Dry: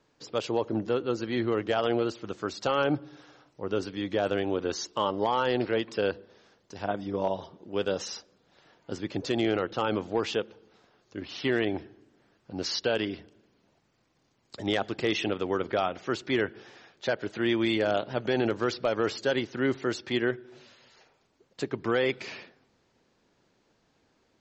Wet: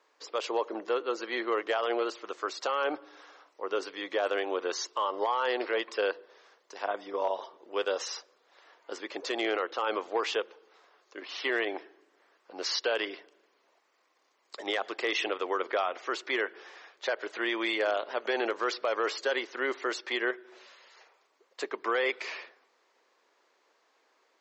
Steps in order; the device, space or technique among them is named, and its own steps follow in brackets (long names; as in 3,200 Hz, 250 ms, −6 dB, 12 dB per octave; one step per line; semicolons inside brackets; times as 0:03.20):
laptop speaker (high-pass filter 400 Hz 24 dB per octave; parametric band 1,100 Hz +7 dB 0.42 octaves; parametric band 2,000 Hz +4.5 dB 0.5 octaves; brickwall limiter −19 dBFS, peak gain reduction 7 dB)